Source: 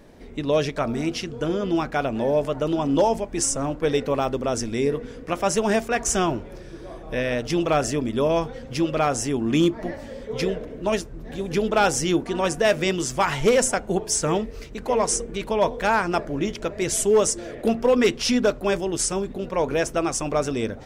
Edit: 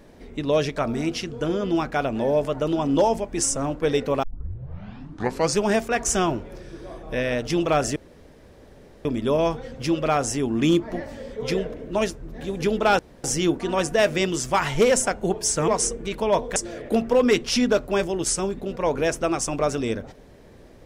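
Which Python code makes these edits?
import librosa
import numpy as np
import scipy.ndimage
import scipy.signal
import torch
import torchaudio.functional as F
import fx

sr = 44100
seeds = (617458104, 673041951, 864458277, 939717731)

y = fx.edit(x, sr, fx.tape_start(start_s=4.23, length_s=1.46),
    fx.insert_room_tone(at_s=7.96, length_s=1.09),
    fx.insert_room_tone(at_s=11.9, length_s=0.25),
    fx.cut(start_s=14.34, length_s=0.63),
    fx.cut(start_s=15.85, length_s=1.44), tone=tone)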